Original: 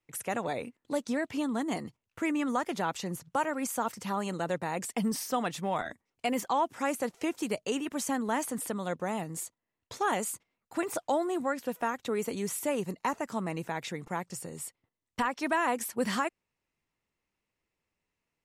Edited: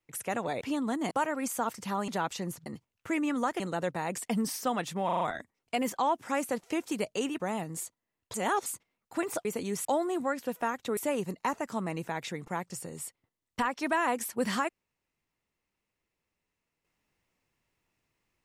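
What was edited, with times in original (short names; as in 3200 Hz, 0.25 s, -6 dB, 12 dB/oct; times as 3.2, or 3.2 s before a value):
0.61–1.28 cut
1.78–2.72 swap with 3.3–4.27
5.72 stutter 0.04 s, 5 plays
7.91–9 cut
9.94–10.26 reverse
12.17–12.57 move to 11.05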